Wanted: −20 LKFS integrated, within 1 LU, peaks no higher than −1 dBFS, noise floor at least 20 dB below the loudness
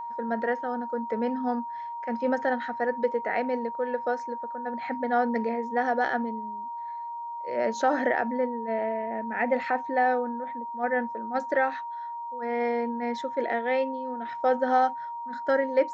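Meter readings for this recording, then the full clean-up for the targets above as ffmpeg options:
interfering tone 940 Hz; level of the tone −33 dBFS; integrated loudness −28.5 LKFS; sample peak −11.5 dBFS; target loudness −20.0 LKFS
→ -af "bandreject=frequency=940:width=30"
-af "volume=8.5dB"

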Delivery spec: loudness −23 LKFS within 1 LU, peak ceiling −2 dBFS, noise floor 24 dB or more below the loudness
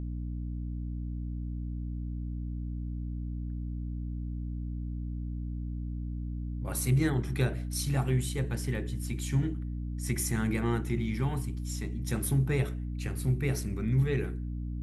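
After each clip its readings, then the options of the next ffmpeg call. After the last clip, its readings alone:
mains hum 60 Hz; hum harmonics up to 300 Hz; level of the hum −33 dBFS; integrated loudness −33.0 LKFS; sample peak −15.0 dBFS; target loudness −23.0 LKFS
→ -af "bandreject=frequency=60:width_type=h:width=6,bandreject=frequency=120:width_type=h:width=6,bandreject=frequency=180:width_type=h:width=6,bandreject=frequency=240:width_type=h:width=6,bandreject=frequency=300:width_type=h:width=6"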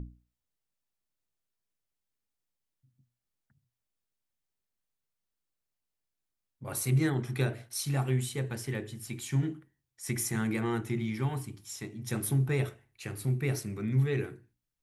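mains hum none found; integrated loudness −32.5 LKFS; sample peak −15.5 dBFS; target loudness −23.0 LKFS
→ -af "volume=9.5dB"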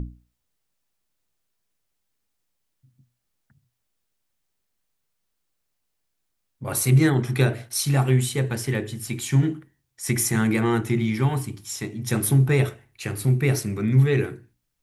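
integrated loudness −23.0 LKFS; sample peak −6.0 dBFS; background noise floor −77 dBFS

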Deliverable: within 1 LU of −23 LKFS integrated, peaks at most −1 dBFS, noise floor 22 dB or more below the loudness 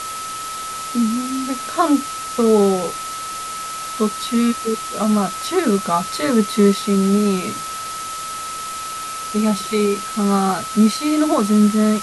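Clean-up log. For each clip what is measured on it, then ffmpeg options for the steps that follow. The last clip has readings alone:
interfering tone 1,300 Hz; level of the tone −27 dBFS; background noise floor −28 dBFS; target noise floor −42 dBFS; integrated loudness −19.5 LKFS; sample peak −3.5 dBFS; target loudness −23.0 LKFS
→ -af "bandreject=frequency=1300:width=30"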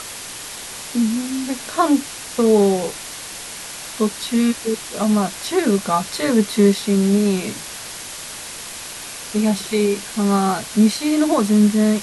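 interfering tone none found; background noise floor −33 dBFS; target noise floor −41 dBFS
→ -af "afftdn=noise_reduction=8:noise_floor=-33"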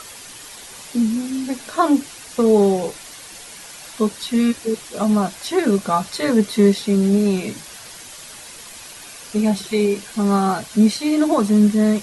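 background noise floor −39 dBFS; target noise floor −41 dBFS
→ -af "afftdn=noise_reduction=6:noise_floor=-39"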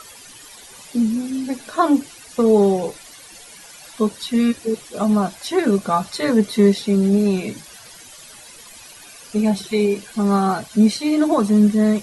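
background noise floor −42 dBFS; integrated loudness −19.0 LKFS; sample peak −3.5 dBFS; target loudness −23.0 LKFS
→ -af "volume=-4dB"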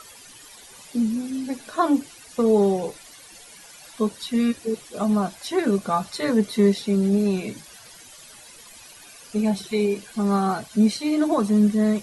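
integrated loudness −23.0 LKFS; sample peak −7.5 dBFS; background noise floor −46 dBFS

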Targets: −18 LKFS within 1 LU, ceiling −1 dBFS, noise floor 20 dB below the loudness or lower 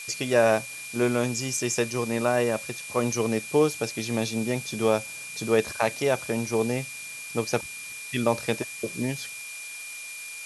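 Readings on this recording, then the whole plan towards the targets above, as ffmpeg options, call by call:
interfering tone 2,400 Hz; level of the tone −38 dBFS; background noise floor −39 dBFS; target noise floor −47 dBFS; integrated loudness −27.0 LKFS; sample peak −8.0 dBFS; target loudness −18.0 LKFS
→ -af "bandreject=frequency=2400:width=30"
-af "afftdn=noise_reduction=8:noise_floor=-39"
-af "volume=9dB,alimiter=limit=-1dB:level=0:latency=1"

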